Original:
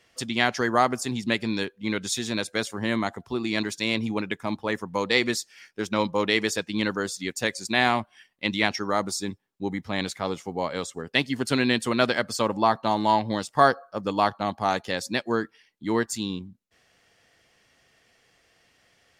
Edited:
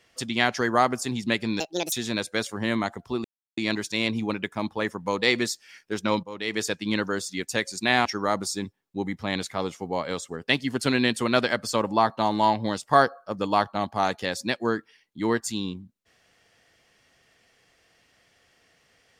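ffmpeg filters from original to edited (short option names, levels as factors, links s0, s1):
-filter_complex "[0:a]asplit=6[s0][s1][s2][s3][s4][s5];[s0]atrim=end=1.604[s6];[s1]atrim=start=1.6:end=2.13,asetpts=PTS-STARTPTS,asetrate=72324,aresample=44100[s7];[s2]atrim=start=2.126:end=3.45,asetpts=PTS-STARTPTS,afade=t=out:st=1.32:d=0.004:c=hsin,apad=pad_dur=0.33[s8];[s3]atrim=start=3.45:end=6.11,asetpts=PTS-STARTPTS,afade=t=in:d=0.004:c=hsin,afade=t=out:st=2.656:d=0.004:c=hsin:silence=0.177828[s9];[s4]atrim=start=6.11:end=7.932,asetpts=PTS-STARTPTS,afade=t=in:d=0.41:c=qua:silence=0.177828[s10];[s5]atrim=start=8.708[s11];[s6][s7]acrossfade=d=0.004:c1=hsin:c2=hsin[s12];[s8][s9][s10]concat=n=3:v=0:a=1[s13];[s12][s13]acrossfade=d=0.004:c1=hsin:c2=hsin[s14];[s14][s11]acrossfade=d=0.004:c1=hsin:c2=hsin"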